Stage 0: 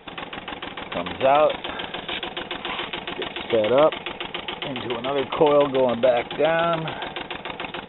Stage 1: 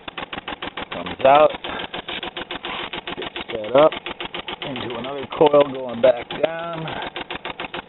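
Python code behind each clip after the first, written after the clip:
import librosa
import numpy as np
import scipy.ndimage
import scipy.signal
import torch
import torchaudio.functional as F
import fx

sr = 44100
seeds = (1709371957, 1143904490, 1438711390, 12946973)

y = fx.level_steps(x, sr, step_db=17)
y = y * 10.0 ** (6.0 / 20.0)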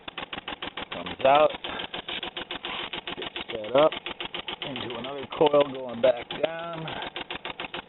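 y = fx.dynamic_eq(x, sr, hz=3100.0, q=2.3, threshold_db=-39.0, ratio=4.0, max_db=4)
y = y * 10.0 ** (-6.5 / 20.0)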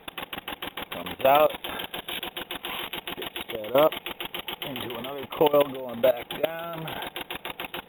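y = np.repeat(scipy.signal.resample_poly(x, 1, 3), 3)[:len(x)]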